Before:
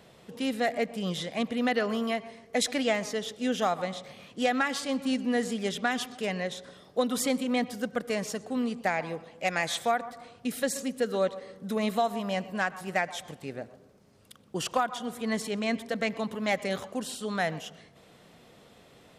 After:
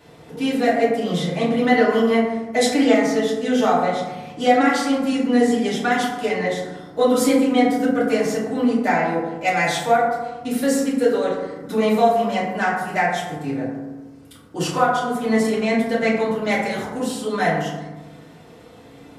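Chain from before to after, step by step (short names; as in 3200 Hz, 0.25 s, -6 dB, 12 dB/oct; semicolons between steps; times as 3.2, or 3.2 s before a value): FDN reverb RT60 1.1 s, low-frequency decay 1.4×, high-frequency decay 0.35×, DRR -9.5 dB; gain -1 dB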